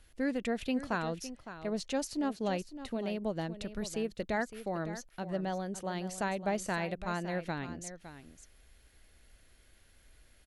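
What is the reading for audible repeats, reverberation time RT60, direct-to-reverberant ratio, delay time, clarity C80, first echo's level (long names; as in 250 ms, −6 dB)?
1, no reverb audible, no reverb audible, 560 ms, no reverb audible, −12.5 dB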